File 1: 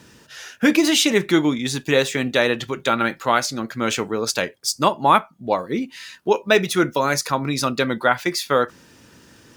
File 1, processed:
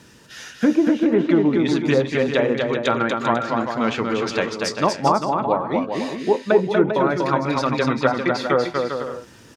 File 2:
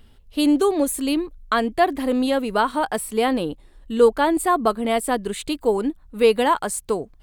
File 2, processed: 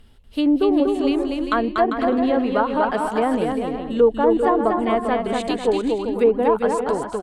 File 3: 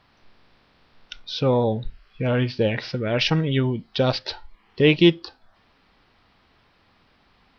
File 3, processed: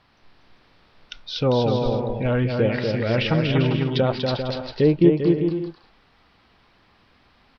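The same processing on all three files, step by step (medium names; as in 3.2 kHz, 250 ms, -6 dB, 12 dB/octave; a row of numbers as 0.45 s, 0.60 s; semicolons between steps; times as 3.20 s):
low-pass that closes with the level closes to 790 Hz, closed at -13.5 dBFS; bouncing-ball echo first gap 240 ms, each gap 0.65×, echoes 5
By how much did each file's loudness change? 0.0 LU, +1.0 LU, +0.5 LU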